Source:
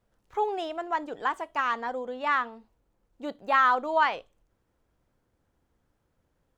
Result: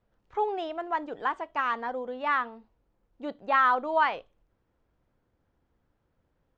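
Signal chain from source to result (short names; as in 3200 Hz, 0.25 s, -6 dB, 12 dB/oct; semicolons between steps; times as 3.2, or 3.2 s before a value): air absorption 140 m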